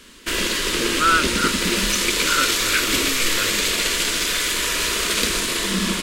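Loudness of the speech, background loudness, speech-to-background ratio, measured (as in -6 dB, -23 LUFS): -24.0 LUFS, -19.5 LUFS, -4.5 dB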